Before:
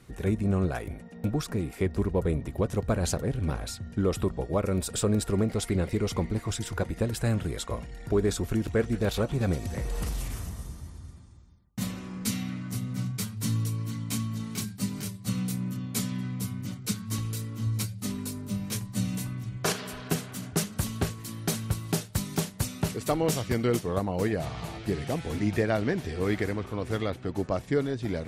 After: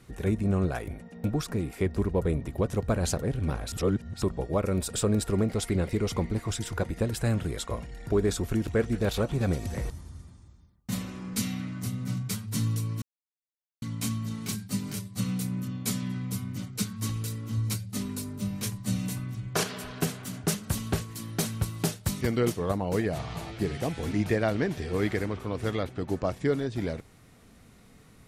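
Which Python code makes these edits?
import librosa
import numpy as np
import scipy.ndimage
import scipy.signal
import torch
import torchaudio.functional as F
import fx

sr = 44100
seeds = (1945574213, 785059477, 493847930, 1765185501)

y = fx.edit(x, sr, fx.reverse_span(start_s=3.72, length_s=0.5),
    fx.cut(start_s=9.9, length_s=0.89),
    fx.insert_silence(at_s=13.91, length_s=0.8),
    fx.cut(start_s=22.3, length_s=1.18), tone=tone)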